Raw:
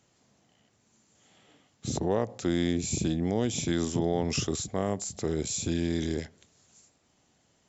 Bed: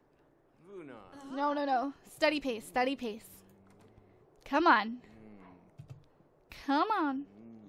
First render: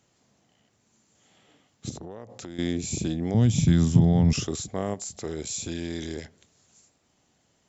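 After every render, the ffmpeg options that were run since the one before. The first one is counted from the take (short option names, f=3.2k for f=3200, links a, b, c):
-filter_complex "[0:a]asettb=1/sr,asplit=3[a][b][c];[a]atrim=end=1.894[d];[b]atrim=start=1.89:end=2.59,asetpts=PTS-STARTPTS,afade=t=in:d=0.004:c=qsin,afade=t=out:st=0.696:d=0.004:c=qsin,acompressor=threshold=-36dB:ratio=6:attack=3.2:release=140:knee=1:detection=peak[e];[c]atrim=start=2.586[f];[d][e]acrossfade=d=0.004:c1=hsin:c2=qsin[g];[g][f]acrossfade=d=0.004:c1=qsin:c2=hsin,asettb=1/sr,asplit=3[h][i][j];[h]atrim=end=3.344[k];[i]atrim=start=3.34:end=4.33,asetpts=PTS-STARTPTS,afade=t=in:d=0.004:c=qsin,afade=t=out:st=0.986:d=0.004:c=qsin,lowshelf=f=240:t=q:w=1.5:g=12.5[l];[j]atrim=start=4.326[m];[k][l]acrossfade=d=0.004:c1=hsin:c2=qsin[n];[n][m]acrossfade=d=0.004:c1=qsin:c2=hsin,asettb=1/sr,asplit=3[o][p][q];[o]atrim=end=4.944[r];[p]atrim=start=4.94:end=6.24,asetpts=PTS-STARTPTS,afade=t=in:d=0.004:c=qsin,afade=t=out:st=1.296:d=0.004:c=qsin,equalizer=f=150:t=o:w=2.9:g=-5.5[s];[q]atrim=start=6.236[t];[r][s]acrossfade=d=0.004:c1=hsin:c2=qsin[u];[u][t]acrossfade=d=0.004:c1=qsin:c2=hsin"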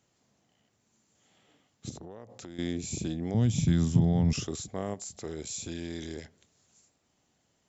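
-af "volume=-5dB"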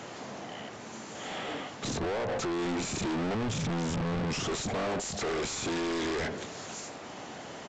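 -filter_complex "[0:a]asplit=2[a][b];[b]highpass=f=720:p=1,volume=46dB,asoftclip=type=tanh:threshold=-12dB[c];[a][c]amix=inputs=2:normalize=0,lowpass=f=1k:p=1,volume=-6dB,aresample=16000,asoftclip=type=tanh:threshold=-30dB,aresample=44100"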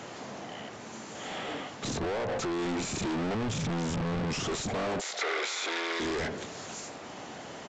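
-filter_complex "[0:a]asettb=1/sr,asplit=3[a][b][c];[a]atrim=end=5.014[d];[b]atrim=start=5.01:end=6,asetpts=PTS-STARTPTS,afade=t=in:d=0.004:c=qsin,afade=t=out:st=0.986:d=0.004:c=qsin,highpass=f=410:w=0.5412,highpass=f=410:w=1.3066,equalizer=f=1.4k:t=q:w=4:g=6,equalizer=f=2.1k:t=q:w=4:g=9,equalizer=f=3.6k:t=q:w=4:g=6,lowpass=f=7.1k:w=0.5412,lowpass=f=7.1k:w=1.3066[e];[c]atrim=start=5.996[f];[d][e]acrossfade=d=0.004:c1=hsin:c2=qsin[g];[g][f]acrossfade=d=0.004:c1=qsin:c2=hsin"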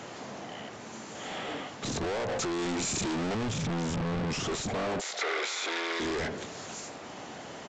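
-filter_complex "[0:a]asettb=1/sr,asplit=3[a][b][c];[a]atrim=end=1.964[d];[b]atrim=start=1.96:end=3.5,asetpts=PTS-STARTPTS,afade=t=in:d=0.004:c=qsin,afade=t=out:st=1.536:d=0.004:c=qsin,aemphasis=mode=production:type=cd[e];[c]atrim=start=3.496[f];[d][e]acrossfade=d=0.004:c1=hsin:c2=qsin[g];[g][f]acrossfade=d=0.004:c1=qsin:c2=hsin"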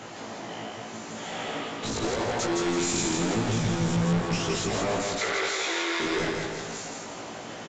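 -filter_complex "[0:a]asplit=2[a][b];[b]adelay=18,volume=-2dB[c];[a][c]amix=inputs=2:normalize=0,aecho=1:1:165|330|495|660|825|990:0.708|0.34|0.163|0.0783|0.0376|0.018"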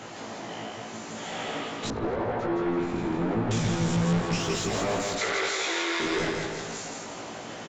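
-filter_complex "[0:a]asettb=1/sr,asplit=3[a][b][c];[a]atrim=end=1.904[d];[b]atrim=start=1.9:end=3.51,asetpts=PTS-STARTPTS,afade=t=in:d=0.004:c=qsin,afade=t=out:st=1.606:d=0.004:c=qsin,lowpass=1.5k[e];[c]atrim=start=3.506[f];[d][e]acrossfade=d=0.004:c1=hsin:c2=qsin[g];[g][f]acrossfade=d=0.004:c1=qsin:c2=hsin,asettb=1/sr,asplit=3[h][i][j];[h]atrim=end=4.404[k];[i]atrim=start=4.4:end=5.15,asetpts=PTS-STARTPTS,afade=t=in:d=0.004:c=qsin,afade=t=out:st=0.746:d=0.004:c=qsin,aeval=exprs='sgn(val(0))*max(abs(val(0))-0.002,0)':c=same[l];[j]atrim=start=5.146[m];[k][l]acrossfade=d=0.004:c1=hsin:c2=qsin[n];[n][m]acrossfade=d=0.004:c1=qsin:c2=hsin"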